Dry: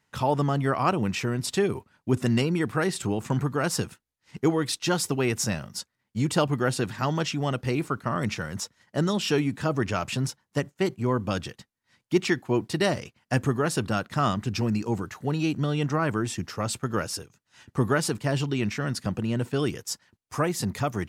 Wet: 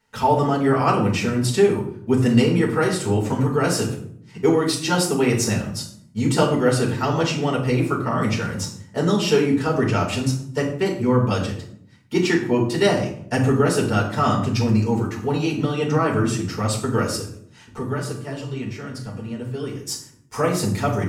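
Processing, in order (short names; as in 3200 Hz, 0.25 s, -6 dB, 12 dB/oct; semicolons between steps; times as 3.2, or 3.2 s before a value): 17.78–19.82 resonator 130 Hz, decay 1.2 s, harmonics odd, mix 70%; reverb RT60 0.65 s, pre-delay 4 ms, DRR -3.5 dB; gain -1.5 dB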